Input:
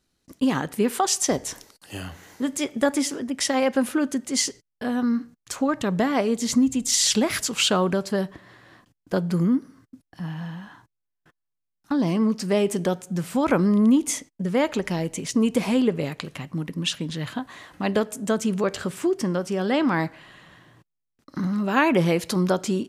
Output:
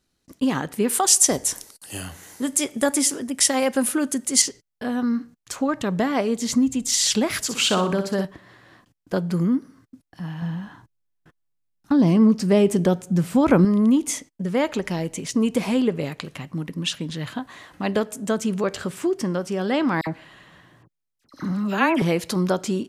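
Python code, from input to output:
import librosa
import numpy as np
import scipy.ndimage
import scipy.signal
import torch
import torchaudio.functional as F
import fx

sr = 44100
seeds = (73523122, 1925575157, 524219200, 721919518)

y = fx.peak_eq(x, sr, hz=10000.0, db=13.0, octaves=1.2, at=(0.89, 4.42))
y = fx.room_flutter(y, sr, wall_m=10.5, rt60_s=0.44, at=(7.39, 8.25))
y = fx.low_shelf(y, sr, hz=410.0, db=8.0, at=(10.42, 13.65))
y = fx.dispersion(y, sr, late='lows', ms=57.0, hz=1900.0, at=(20.01, 22.02))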